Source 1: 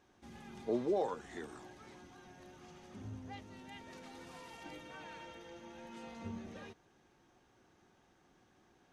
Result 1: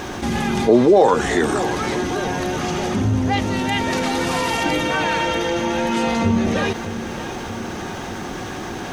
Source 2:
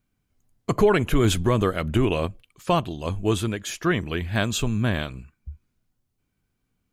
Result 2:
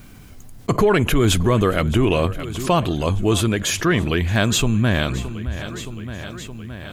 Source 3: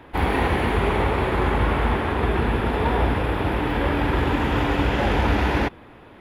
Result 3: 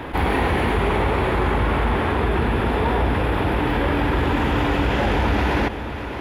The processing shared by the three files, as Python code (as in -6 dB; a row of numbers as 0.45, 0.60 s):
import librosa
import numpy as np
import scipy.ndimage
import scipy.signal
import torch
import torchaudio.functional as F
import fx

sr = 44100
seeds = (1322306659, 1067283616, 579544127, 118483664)

p1 = 10.0 ** (-19.5 / 20.0) * np.tanh(x / 10.0 ** (-19.5 / 20.0))
p2 = x + (p1 * 10.0 ** (-11.0 / 20.0))
p3 = fx.echo_feedback(p2, sr, ms=619, feedback_pct=55, wet_db=-21.5)
p4 = fx.env_flatten(p3, sr, amount_pct=50)
y = p4 * 10.0 ** (-20 / 20.0) / np.sqrt(np.mean(np.square(p4)))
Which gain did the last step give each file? +17.5, -0.5, -2.0 dB